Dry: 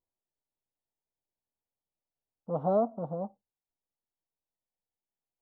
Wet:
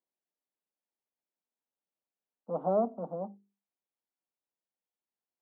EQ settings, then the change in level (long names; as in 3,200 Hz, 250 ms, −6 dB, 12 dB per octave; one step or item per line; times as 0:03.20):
Butterworth high-pass 180 Hz 48 dB per octave
high-frequency loss of the air 370 metres
mains-hum notches 50/100/150/200/250/300/350/400/450 Hz
0.0 dB